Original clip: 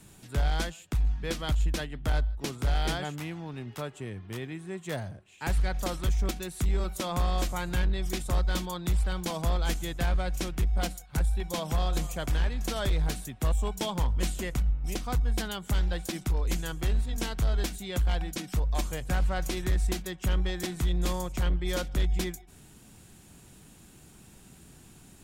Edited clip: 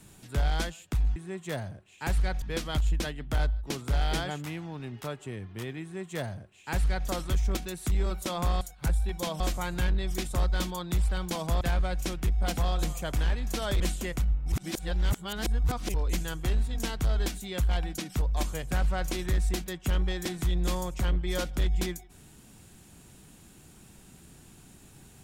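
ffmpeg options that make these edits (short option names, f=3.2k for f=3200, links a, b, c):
-filter_complex "[0:a]asplit=10[a][b][c][d][e][f][g][h][i][j];[a]atrim=end=1.162[k];[b]atrim=start=4.558:end=5.822[l];[c]atrim=start=1.158:end=7.352[m];[d]atrim=start=10.918:end=11.712[n];[e]atrim=start=7.348:end=9.562[o];[f]atrim=start=9.958:end=10.922[p];[g]atrim=start=11.708:end=12.942[q];[h]atrim=start=14.178:end=14.902[r];[i]atrim=start=14.898:end=16.322,asetpts=PTS-STARTPTS,areverse[s];[j]atrim=start=16.318[t];[k][l]acrossfade=d=0.004:c1=hsin:c2=hsin[u];[u][m]acrossfade=d=0.004:c1=hsin:c2=hsin[v];[v][n]acrossfade=d=0.004:c1=hsin:c2=hsin[w];[w][o]acrossfade=d=0.004:c1=hsin:c2=hsin[x];[x][p]acrossfade=d=0.004:c1=hsin:c2=hsin[y];[y][q]acrossfade=d=0.004:c1=hsin:c2=hsin[z];[z][r]acrossfade=d=0.004:c1=hsin:c2=hsin[aa];[aa][s]acrossfade=d=0.004:c1=hsin:c2=hsin[ab];[ab][t]acrossfade=d=0.004:c1=hsin:c2=hsin"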